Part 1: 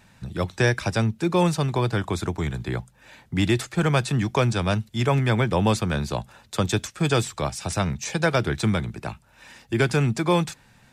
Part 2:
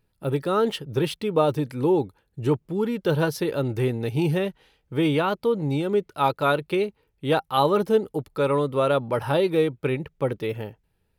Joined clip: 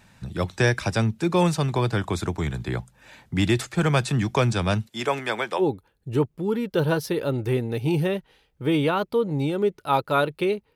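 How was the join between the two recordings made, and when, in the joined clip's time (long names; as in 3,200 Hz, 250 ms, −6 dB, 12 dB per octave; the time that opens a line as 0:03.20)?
part 1
0:04.86–0:05.63: high-pass filter 260 Hz → 650 Hz
0:05.60: continue with part 2 from 0:01.91, crossfade 0.06 s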